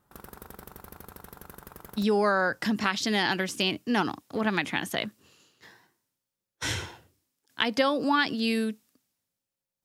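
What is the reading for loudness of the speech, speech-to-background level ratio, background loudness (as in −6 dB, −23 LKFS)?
−27.5 LKFS, 19.5 dB, −47.0 LKFS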